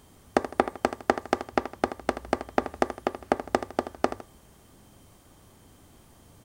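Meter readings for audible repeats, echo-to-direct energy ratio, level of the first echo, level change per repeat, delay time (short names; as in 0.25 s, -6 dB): 2, -11.5 dB, -12.0 dB, -8.0 dB, 79 ms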